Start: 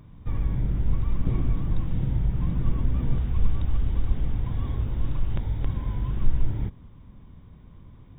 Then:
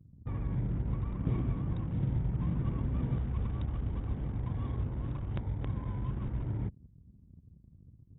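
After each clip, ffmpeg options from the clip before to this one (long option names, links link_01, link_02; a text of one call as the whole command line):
ffmpeg -i in.wav -af "anlmdn=0.158,highpass=75,volume=-3dB" out.wav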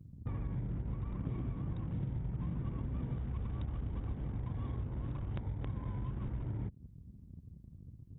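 ffmpeg -i in.wav -af "acompressor=threshold=-40dB:ratio=4,volume=4dB" out.wav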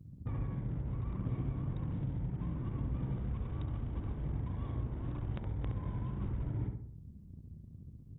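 ffmpeg -i in.wav -filter_complex "[0:a]asplit=2[link_01][link_02];[link_02]adelay=68,lowpass=frequency=1700:poles=1,volume=-4dB,asplit=2[link_03][link_04];[link_04]adelay=68,lowpass=frequency=1700:poles=1,volume=0.49,asplit=2[link_05][link_06];[link_06]adelay=68,lowpass=frequency=1700:poles=1,volume=0.49,asplit=2[link_07][link_08];[link_08]adelay=68,lowpass=frequency=1700:poles=1,volume=0.49,asplit=2[link_09][link_10];[link_10]adelay=68,lowpass=frequency=1700:poles=1,volume=0.49,asplit=2[link_11][link_12];[link_12]adelay=68,lowpass=frequency=1700:poles=1,volume=0.49[link_13];[link_01][link_03][link_05][link_07][link_09][link_11][link_13]amix=inputs=7:normalize=0" out.wav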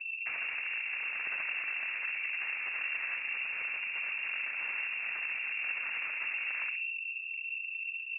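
ffmpeg -i in.wav -filter_complex "[0:a]asplit=2[link_01][link_02];[link_02]aeval=exprs='0.0668*sin(PI/2*10*val(0)/0.0668)':channel_layout=same,volume=-7.5dB[link_03];[link_01][link_03]amix=inputs=2:normalize=0,lowpass=frequency=2400:width_type=q:width=0.5098,lowpass=frequency=2400:width_type=q:width=0.6013,lowpass=frequency=2400:width_type=q:width=0.9,lowpass=frequency=2400:width_type=q:width=2.563,afreqshift=-2800,volume=-4dB" out.wav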